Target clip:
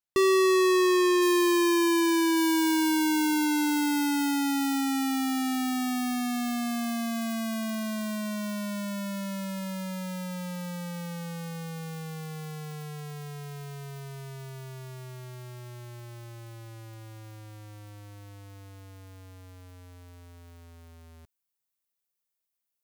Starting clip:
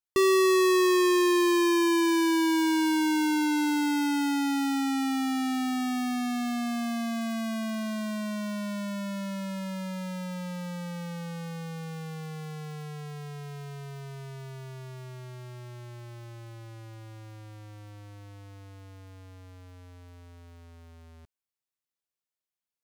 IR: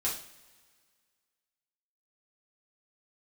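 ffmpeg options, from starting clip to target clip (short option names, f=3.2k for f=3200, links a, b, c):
-af "asetnsamples=n=441:p=0,asendcmd='1.22 highshelf g 6.5;2.37 highshelf g 11.5',highshelf=f=9.3k:g=-3"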